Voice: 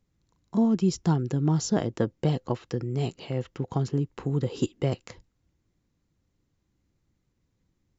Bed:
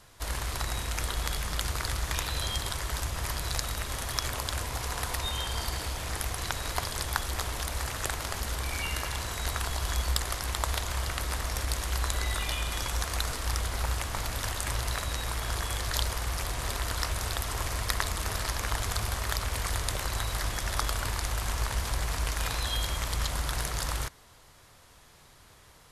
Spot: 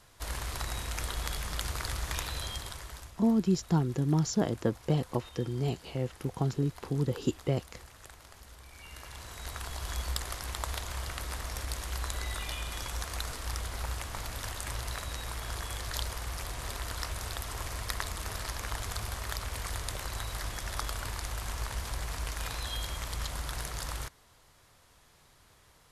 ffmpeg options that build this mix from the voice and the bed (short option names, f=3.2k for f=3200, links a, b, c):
-filter_complex "[0:a]adelay=2650,volume=-3dB[a];[1:a]volume=10dB,afade=t=out:st=2.2:d=0.97:silence=0.16788,afade=t=in:st=8.74:d=1.25:silence=0.211349[b];[a][b]amix=inputs=2:normalize=0"